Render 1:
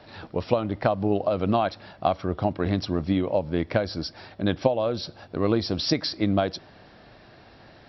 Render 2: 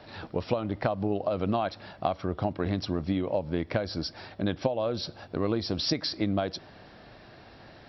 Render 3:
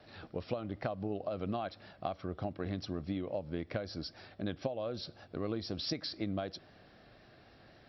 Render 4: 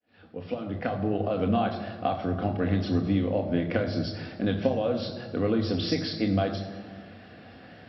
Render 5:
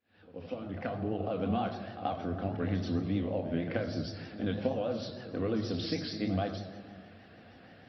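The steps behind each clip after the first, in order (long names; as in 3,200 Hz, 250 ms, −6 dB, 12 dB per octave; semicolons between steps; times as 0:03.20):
downward compressor 2 to 1, threshold −27 dBFS, peak gain reduction 7 dB
parametric band 930 Hz −8 dB 0.21 octaves; pitch vibrato 3.9 Hz 33 cents; level −8.5 dB
fade in at the beginning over 1.17 s; convolution reverb RT60 1.5 s, pre-delay 3 ms, DRR 3 dB; level +1 dB
pitch vibrato 6.4 Hz 87 cents; echo ahead of the sound 82 ms −13 dB; level −6.5 dB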